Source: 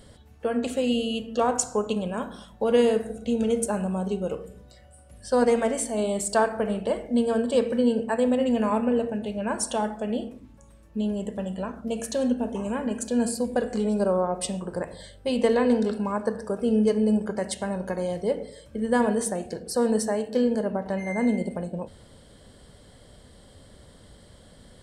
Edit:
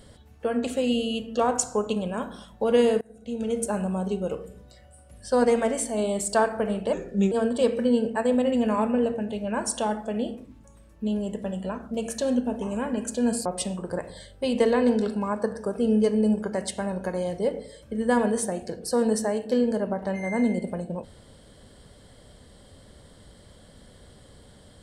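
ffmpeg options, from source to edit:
-filter_complex "[0:a]asplit=5[a][b][c][d][e];[a]atrim=end=3.01,asetpts=PTS-STARTPTS,afade=t=out:st=3.006:d=0.004:c=hsin:silence=0.0707946[f];[b]atrim=start=3.01:end=6.934,asetpts=PTS-STARTPTS,afade=t=in:d=0.76:silence=0.0707946[g];[c]atrim=start=6.93:end=7.25,asetpts=PTS-STARTPTS,asetrate=36603,aresample=44100,atrim=end_sample=17002,asetpts=PTS-STARTPTS[h];[d]atrim=start=7.246:end=13.392[i];[e]atrim=start=14.288[j];[f][g]concat=n=2:v=0:a=1[k];[k][h]acrossfade=d=0.004:c1=hsin:c2=hsin[l];[l][i]acrossfade=d=0.004:c1=hsin:c2=hsin[m];[m][j]acrossfade=d=0.004:c1=hsin:c2=hsin"

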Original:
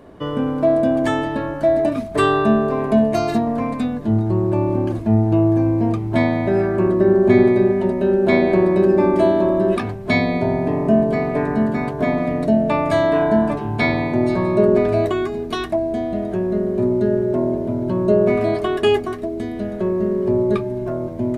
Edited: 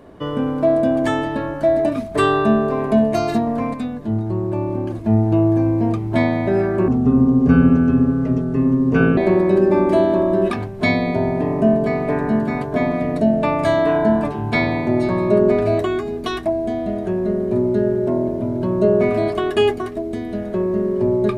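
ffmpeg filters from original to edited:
-filter_complex "[0:a]asplit=5[a][b][c][d][e];[a]atrim=end=3.742[f];[b]atrim=start=3.738:end=5.042,asetpts=PTS-STARTPTS,volume=-3.5dB[g];[c]atrim=start=5.038:end=6.884[h];[d]atrim=start=6.88:end=8.44,asetpts=PTS-STARTPTS,asetrate=29988,aresample=44100[i];[e]atrim=start=8.436[j];[f][g]acrossfade=d=0.004:c1=hsin:c2=hsin[k];[k][h]acrossfade=d=0.004:c1=hsin:c2=hsin[l];[l][i]acrossfade=d=0.004:c1=hsin:c2=hsin[m];[m][j]acrossfade=d=0.004:c1=hsin:c2=hsin"

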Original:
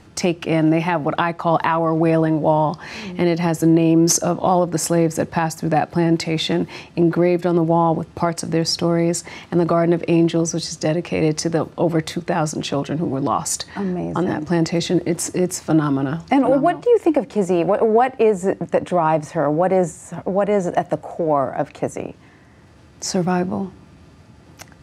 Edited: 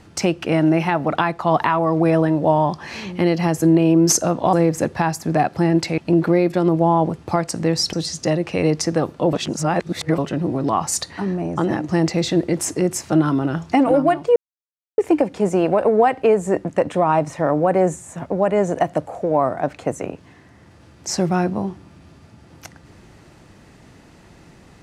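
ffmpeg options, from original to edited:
-filter_complex "[0:a]asplit=7[a][b][c][d][e][f][g];[a]atrim=end=4.532[h];[b]atrim=start=4.898:end=6.352[i];[c]atrim=start=6.868:end=8.822[j];[d]atrim=start=10.508:end=11.912[k];[e]atrim=start=11.908:end=12.762,asetpts=PTS-STARTPTS,areverse[l];[f]atrim=start=12.758:end=16.94,asetpts=PTS-STARTPTS,afade=t=out:st=4.178:d=0.004:c=hsin,apad=pad_dur=0.62[m];[g]atrim=start=16.94,asetpts=PTS-STARTPTS,afade=t=in:d=0.004:c=hsin[n];[h][i]acrossfade=d=0.004:c1=hsin:c2=hsin[o];[o][j]acrossfade=d=0.004:c1=hsin:c2=hsin[p];[p][k]acrossfade=d=0.004:c1=hsin:c2=hsin[q];[q][l]acrossfade=d=0.004:c1=hsin:c2=hsin[r];[m][n]concat=n=2:v=0:a=1[s];[r][s]acrossfade=d=0.004:c1=hsin:c2=hsin"

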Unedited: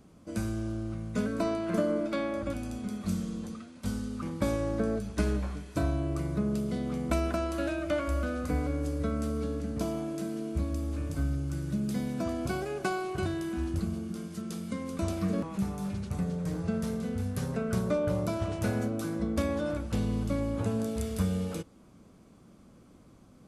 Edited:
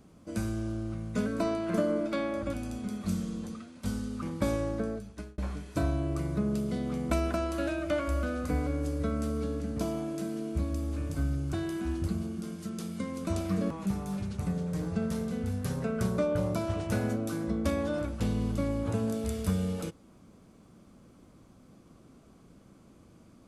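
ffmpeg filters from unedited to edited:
-filter_complex "[0:a]asplit=3[a][b][c];[a]atrim=end=5.38,asetpts=PTS-STARTPTS,afade=t=out:st=4.58:d=0.8[d];[b]atrim=start=5.38:end=11.532,asetpts=PTS-STARTPTS,afade=t=in:d=0.004:c=hsin[e];[c]atrim=start=13.248[f];[d][e]concat=n=2:v=0:a=1[g];[g][f]acrossfade=d=0.004:c1=hsin:c2=hsin"

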